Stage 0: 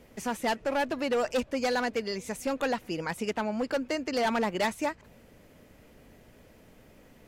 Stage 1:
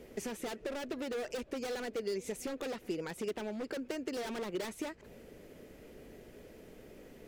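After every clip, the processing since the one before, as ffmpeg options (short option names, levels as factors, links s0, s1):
-af "aeval=exprs='0.0473*(abs(mod(val(0)/0.0473+3,4)-2)-1)':c=same,acompressor=threshold=0.0112:ratio=6,equalizer=f=100:t=o:w=0.67:g=-4,equalizer=f=400:t=o:w=0.67:g=9,equalizer=f=1000:t=o:w=0.67:g=-4"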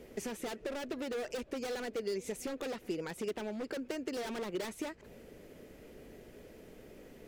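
-af anull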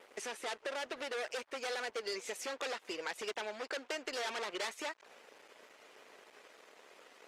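-af "aeval=exprs='sgn(val(0))*max(abs(val(0))-0.00141,0)':c=same,highpass=790,lowpass=7600,volume=2.24" -ar 48000 -c:a libopus -b:a 24k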